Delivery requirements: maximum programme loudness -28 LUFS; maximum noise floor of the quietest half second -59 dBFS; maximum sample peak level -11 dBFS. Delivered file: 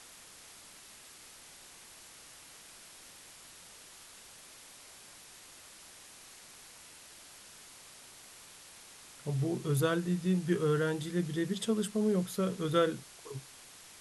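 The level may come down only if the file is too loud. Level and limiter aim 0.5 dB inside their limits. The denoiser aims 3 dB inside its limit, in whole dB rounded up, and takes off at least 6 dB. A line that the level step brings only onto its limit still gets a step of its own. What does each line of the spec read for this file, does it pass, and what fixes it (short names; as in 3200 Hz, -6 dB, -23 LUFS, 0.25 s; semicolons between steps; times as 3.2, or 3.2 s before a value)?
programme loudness -32.5 LUFS: OK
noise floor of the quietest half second -54 dBFS: fail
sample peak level -16.5 dBFS: OK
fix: denoiser 8 dB, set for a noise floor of -54 dBFS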